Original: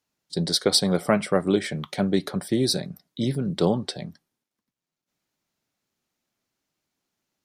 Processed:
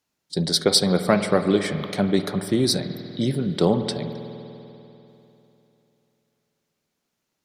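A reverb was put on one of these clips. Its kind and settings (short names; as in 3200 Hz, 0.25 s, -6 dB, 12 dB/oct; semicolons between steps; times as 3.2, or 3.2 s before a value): spring tank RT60 3.2 s, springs 49 ms, chirp 25 ms, DRR 8.5 dB; gain +2 dB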